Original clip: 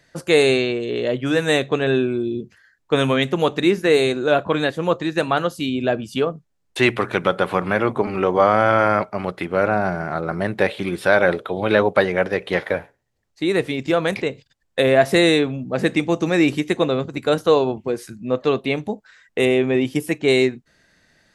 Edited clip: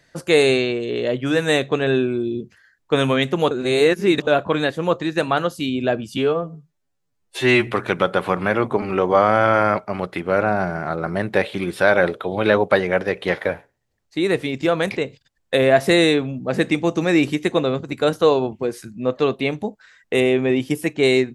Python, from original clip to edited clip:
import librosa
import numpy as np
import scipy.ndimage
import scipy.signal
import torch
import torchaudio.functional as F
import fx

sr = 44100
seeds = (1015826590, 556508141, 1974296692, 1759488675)

y = fx.edit(x, sr, fx.reverse_span(start_s=3.51, length_s=0.76),
    fx.stretch_span(start_s=6.17, length_s=0.75, factor=2.0), tone=tone)